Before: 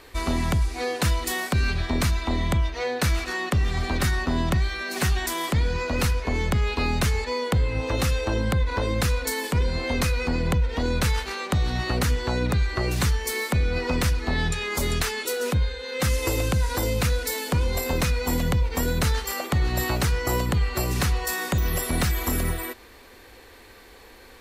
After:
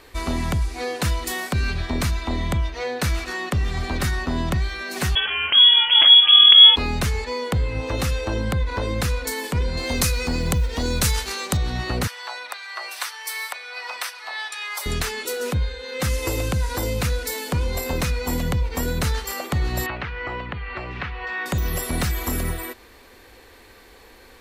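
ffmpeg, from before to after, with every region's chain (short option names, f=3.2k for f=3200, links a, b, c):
-filter_complex "[0:a]asettb=1/sr,asplit=3[a][b][c];[a]atrim=end=5.154[d];[b]atrim=start=5.15:end=6.76,asetpts=PTS-STARTPTS,afade=t=in:d=0.004:c=qsin,afade=t=out:st=1.606:d=0.004:c=qsin,asubboost=boost=9.5:cutoff=94,acontrast=31,lowpass=f=2.9k:t=q:w=0.5098,lowpass=f=2.9k:t=q:w=0.6013,lowpass=f=2.9k:t=q:w=0.9,lowpass=f=2.9k:t=q:w=2.563,afreqshift=-3400[e];[c]atrim=start=6.756[f];[d][e]acrossfade=d=0.004:c1=hsin:c2=qsin[g];[g][f]acrossfade=d=0.004:c1=qsin:c2=hsin,asettb=1/sr,asplit=3[h][i][j];[h]atrim=end=9.774[k];[i]atrim=start=9.77:end=11.57,asetpts=PTS-STARTPTS,afade=t=in:d=0.004:c=qsin,afade=t=out:st=1.796:d=0.004:c=qsin,bass=f=250:g=1,treble=f=4k:g=11,acrusher=bits=9:mode=log:mix=0:aa=0.000001[l];[j]atrim=start=11.566[m];[k][l]acrossfade=d=0.004:c1=hsin:c2=qsin[n];[n][m]acrossfade=d=0.004:c1=qsin:c2=hsin,asettb=1/sr,asplit=3[o][p][q];[o]atrim=end=12.074[r];[p]atrim=start=12.07:end=14.86,asetpts=PTS-STARTPTS,afade=t=in:d=0.004:c=qsin,afade=t=out:st=2.786:d=0.004:c=qsin,highpass=f=770:w=0.5412,highpass=f=770:w=1.3066,bandreject=f=6.9k:w=6.2[s];[q]atrim=start=14.856[t];[r][s]acrossfade=d=0.004:c1=hsin:c2=qsin[u];[u][t]acrossfade=d=0.004:c1=qsin:c2=hsin,asettb=1/sr,asplit=3[v][w][x];[v]atrim=end=19.864[y];[w]atrim=start=19.86:end=21.46,asetpts=PTS-STARTPTS,afade=t=in:d=0.004:c=qsin,afade=t=out:st=1.596:d=0.004:c=qsin,acompressor=threshold=-25dB:ratio=2:attack=3.2:release=140:knee=1:detection=peak,lowpass=f=2.7k:w=0.5412,lowpass=f=2.7k:w=1.3066,tiltshelf=f=840:g=-6.5[z];[x]atrim=start=21.456[aa];[y][z]acrossfade=d=0.004:c1=hsin:c2=qsin[ab];[ab][aa]acrossfade=d=0.004:c1=qsin:c2=hsin"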